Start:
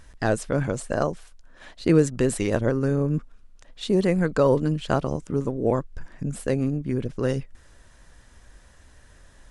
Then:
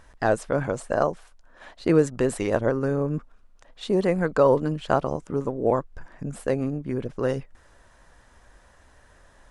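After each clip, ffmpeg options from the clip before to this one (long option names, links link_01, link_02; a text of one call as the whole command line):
ffmpeg -i in.wav -af "equalizer=frequency=850:width_type=o:width=2.3:gain=9,volume=-5dB" out.wav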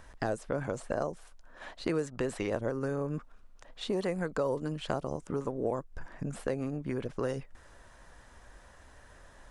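ffmpeg -i in.wav -filter_complex "[0:a]acrossover=split=600|5600[link_01][link_02][link_03];[link_01]acompressor=threshold=-33dB:ratio=4[link_04];[link_02]acompressor=threshold=-38dB:ratio=4[link_05];[link_03]acompressor=threshold=-53dB:ratio=4[link_06];[link_04][link_05][link_06]amix=inputs=3:normalize=0" out.wav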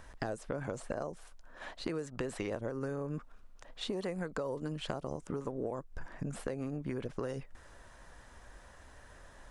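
ffmpeg -i in.wav -af "acompressor=threshold=-33dB:ratio=6" out.wav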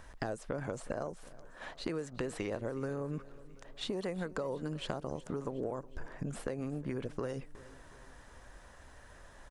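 ffmpeg -i in.wav -af "aecho=1:1:366|732|1098|1464:0.106|0.0583|0.032|0.0176" out.wav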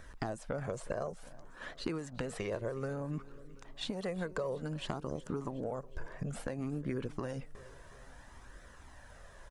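ffmpeg -i in.wav -af "flanger=delay=0.5:depth=1.5:regen=-43:speed=0.58:shape=triangular,volume=4dB" out.wav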